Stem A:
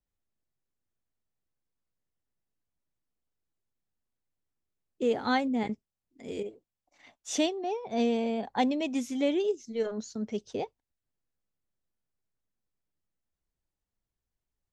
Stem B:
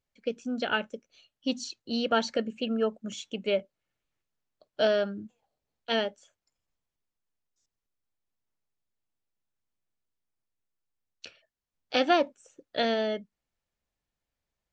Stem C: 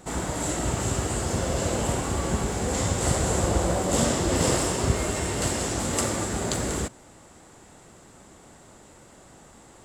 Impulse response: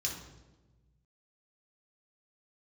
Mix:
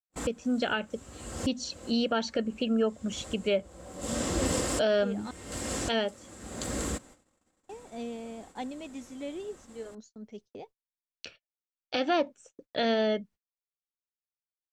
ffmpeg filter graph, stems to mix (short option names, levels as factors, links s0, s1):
-filter_complex "[0:a]volume=0.282,asplit=3[s0][s1][s2];[s0]atrim=end=5.31,asetpts=PTS-STARTPTS,afade=t=out:st=5.306:d=0.004:c=hsin[s3];[s1]atrim=start=5.31:end=7.69,asetpts=PTS-STARTPTS,volume=0[s4];[s2]atrim=start=7.69,asetpts=PTS-STARTPTS,afade=t=in:d=0.004:c=hsin[s5];[s3][s4][s5]concat=n=3:v=0:a=1[s6];[1:a]lowshelf=f=210:g=5,volume=1.26,asplit=2[s7][s8];[2:a]equalizer=f=830:t=o:w=0.2:g=-6,aecho=1:1:3.8:0.39,adelay=100,volume=0.596[s9];[s8]apad=whole_len=438828[s10];[s9][s10]sidechaincompress=threshold=0.00398:ratio=12:attack=11:release=390[s11];[s6][s7][s11]amix=inputs=3:normalize=0,agate=range=0.0126:threshold=0.00282:ratio=16:detection=peak,alimiter=limit=0.133:level=0:latency=1:release=178"